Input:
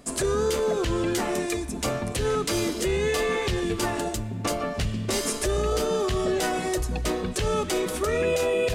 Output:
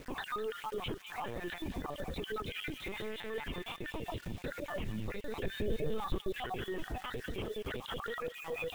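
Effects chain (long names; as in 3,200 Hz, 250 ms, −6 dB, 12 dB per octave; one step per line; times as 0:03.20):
time-frequency cells dropped at random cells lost 59%
0:02.71–0:03.31: tube saturation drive 28 dB, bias 0.6
0:07.86–0:08.40: high-shelf EQ 2,500 Hz +8.5 dB
linear-prediction vocoder at 8 kHz pitch kept
downward compressor 3 to 1, threshold −30 dBFS, peak gain reduction 18 dB
bit reduction 9 bits
brickwall limiter −31.5 dBFS, peak gain reduction 19.5 dB
0:05.43–0:06.41: low-shelf EQ 210 Hz +10.5 dB
delay with a high-pass on its return 203 ms, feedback 55%, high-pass 2,000 Hz, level −9 dB
level +1.5 dB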